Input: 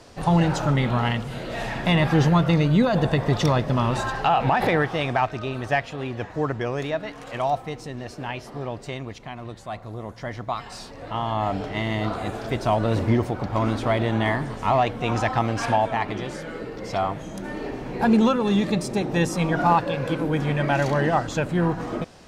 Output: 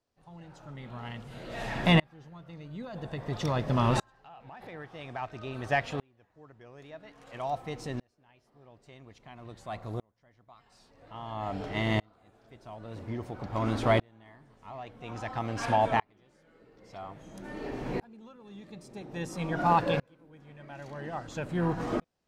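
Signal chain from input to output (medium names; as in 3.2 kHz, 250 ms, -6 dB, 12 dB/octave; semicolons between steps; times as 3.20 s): sawtooth tremolo in dB swelling 0.5 Hz, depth 37 dB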